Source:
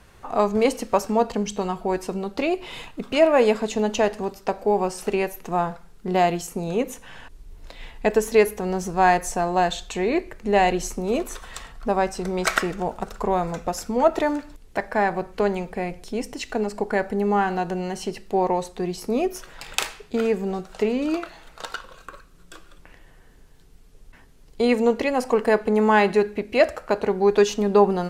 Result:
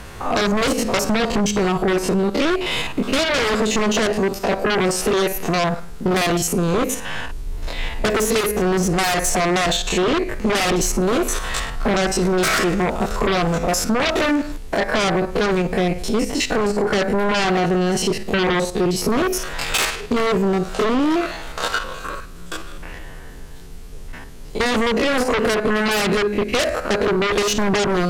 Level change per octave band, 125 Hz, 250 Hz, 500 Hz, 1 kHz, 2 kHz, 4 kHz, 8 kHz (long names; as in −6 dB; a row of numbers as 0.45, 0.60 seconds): +8.0, +5.0, +1.5, +1.0, +7.0, +11.5, +10.5 decibels